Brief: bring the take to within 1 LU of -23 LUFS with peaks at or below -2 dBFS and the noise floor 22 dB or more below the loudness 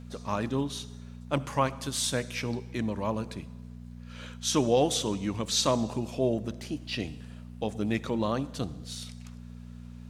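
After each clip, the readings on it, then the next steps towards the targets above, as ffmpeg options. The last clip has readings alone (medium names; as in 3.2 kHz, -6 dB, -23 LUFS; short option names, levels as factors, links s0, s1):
hum 60 Hz; highest harmonic 240 Hz; hum level -41 dBFS; loudness -30.5 LUFS; peak level -12.0 dBFS; loudness target -23.0 LUFS
-> -af "bandreject=f=60:t=h:w=4,bandreject=f=120:t=h:w=4,bandreject=f=180:t=h:w=4,bandreject=f=240:t=h:w=4"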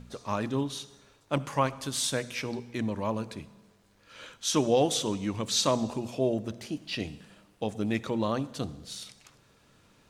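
hum not found; loudness -30.5 LUFS; peak level -12.5 dBFS; loudness target -23.0 LUFS
-> -af "volume=2.37"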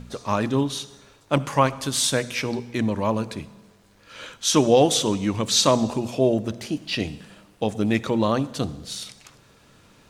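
loudness -23.0 LUFS; peak level -5.0 dBFS; noise floor -56 dBFS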